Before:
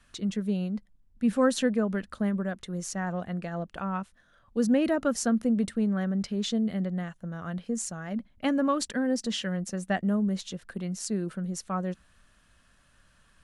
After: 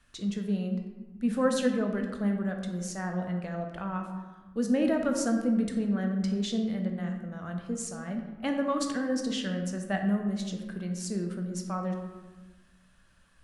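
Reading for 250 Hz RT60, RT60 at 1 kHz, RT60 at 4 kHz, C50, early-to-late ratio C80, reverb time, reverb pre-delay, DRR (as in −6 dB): 1.6 s, 1.2 s, 0.75 s, 5.5 dB, 7.5 dB, 1.2 s, 16 ms, 3.0 dB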